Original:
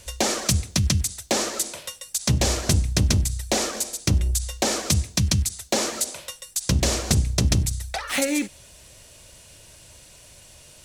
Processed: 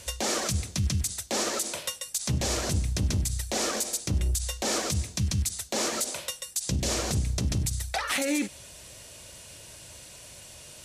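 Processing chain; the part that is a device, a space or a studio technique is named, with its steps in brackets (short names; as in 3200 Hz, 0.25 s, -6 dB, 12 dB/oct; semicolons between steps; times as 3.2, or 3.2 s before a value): 6.25–6.89 dynamic EQ 1200 Hz, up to -7 dB, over -45 dBFS, Q 1.1; podcast mastering chain (HPF 75 Hz 6 dB/oct; compressor 3:1, threshold -23 dBFS, peak gain reduction 6 dB; limiter -20 dBFS, peak gain reduction 10.5 dB; gain +2.5 dB; MP3 112 kbps 32000 Hz)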